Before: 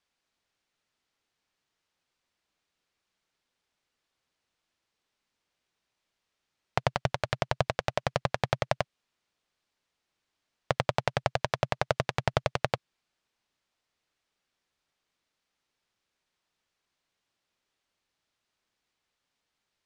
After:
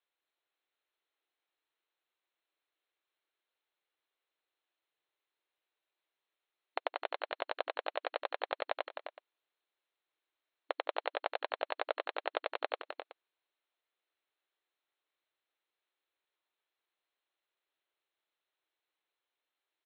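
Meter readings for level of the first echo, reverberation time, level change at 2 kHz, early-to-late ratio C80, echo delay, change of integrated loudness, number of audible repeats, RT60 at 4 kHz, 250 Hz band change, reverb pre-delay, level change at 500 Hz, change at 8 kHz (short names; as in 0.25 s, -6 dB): -15.0 dB, none, -6.5 dB, none, 0.166 s, -8.0 dB, 3, none, -16.5 dB, none, -7.0 dB, under -30 dB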